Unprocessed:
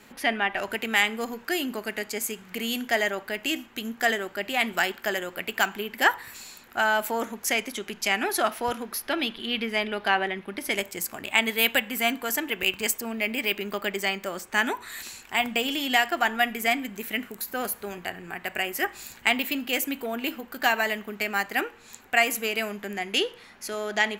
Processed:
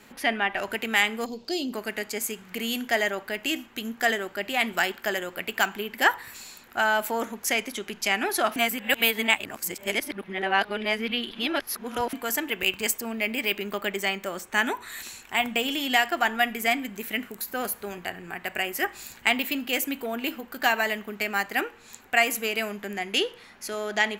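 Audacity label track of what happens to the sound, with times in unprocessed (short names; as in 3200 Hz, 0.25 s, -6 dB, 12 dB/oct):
1.260000	1.730000	EQ curve 600 Hz 0 dB, 1700 Hz -20 dB, 4500 Hz +8 dB, 11000 Hz -14 dB
8.560000	12.130000	reverse
13.700000	15.850000	notch 4800 Hz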